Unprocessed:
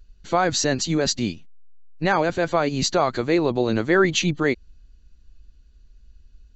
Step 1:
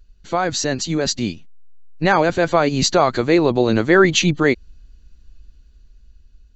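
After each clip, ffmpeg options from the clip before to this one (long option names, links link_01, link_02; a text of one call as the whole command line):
ffmpeg -i in.wav -af "dynaudnorm=framelen=310:gausssize=9:maxgain=11.5dB" out.wav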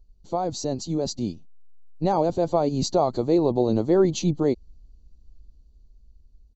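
ffmpeg -i in.wav -af "firequalizer=gain_entry='entry(850,0);entry(1600,-24);entry(4300,-6)':delay=0.05:min_phase=1,volume=-5dB" out.wav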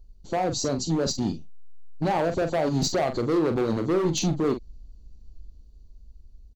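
ffmpeg -i in.wav -filter_complex "[0:a]acompressor=threshold=-23dB:ratio=2,asoftclip=type=hard:threshold=-24dB,asplit=2[link_01][link_02];[link_02]adelay=43,volume=-8.5dB[link_03];[link_01][link_03]amix=inputs=2:normalize=0,volume=4dB" out.wav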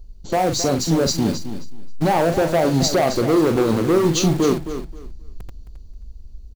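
ffmpeg -i in.wav -filter_complex "[0:a]asplit=2[link_01][link_02];[link_02]aeval=exprs='(mod(44.7*val(0)+1,2)-1)/44.7':channel_layout=same,volume=-7dB[link_03];[link_01][link_03]amix=inputs=2:normalize=0,aecho=1:1:266|532|798:0.282|0.0564|0.0113,volume=6.5dB" out.wav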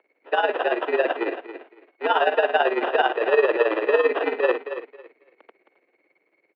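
ffmpeg -i in.wav -af "tremolo=f=18:d=0.71,acrusher=samples=21:mix=1:aa=0.000001,highpass=frequency=280:width_type=q:width=0.5412,highpass=frequency=280:width_type=q:width=1.307,lowpass=frequency=2900:width_type=q:width=0.5176,lowpass=frequency=2900:width_type=q:width=0.7071,lowpass=frequency=2900:width_type=q:width=1.932,afreqshift=99,volume=1.5dB" out.wav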